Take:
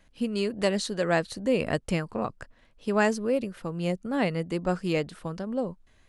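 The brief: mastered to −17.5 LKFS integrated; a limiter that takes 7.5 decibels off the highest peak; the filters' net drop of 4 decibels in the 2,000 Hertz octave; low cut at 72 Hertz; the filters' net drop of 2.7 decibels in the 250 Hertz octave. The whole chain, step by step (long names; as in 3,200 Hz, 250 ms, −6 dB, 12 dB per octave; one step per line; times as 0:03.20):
high-pass filter 72 Hz
parametric band 250 Hz −3.5 dB
parametric band 2,000 Hz −5 dB
level +14.5 dB
brickwall limiter −4.5 dBFS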